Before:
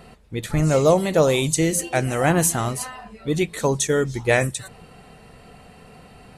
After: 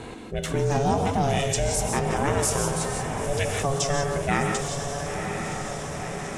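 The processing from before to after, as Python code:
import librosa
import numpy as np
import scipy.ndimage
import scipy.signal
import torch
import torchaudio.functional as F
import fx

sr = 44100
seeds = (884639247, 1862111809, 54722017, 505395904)

p1 = fx.formant_shift(x, sr, semitones=-2)
p2 = fx.backlash(p1, sr, play_db=-34.0)
p3 = p1 + (p2 * 10.0 ** (-9.0 / 20.0))
p4 = p3 * np.sin(2.0 * np.pi * 280.0 * np.arange(len(p3)) / sr)
p5 = p4 + fx.echo_diffused(p4, sr, ms=984, feedback_pct=53, wet_db=-11.5, dry=0)
p6 = fx.rev_gated(p5, sr, seeds[0], gate_ms=200, shape='rising', drr_db=5.5)
p7 = fx.env_flatten(p6, sr, amount_pct=50)
y = p7 * 10.0 ** (-8.0 / 20.0)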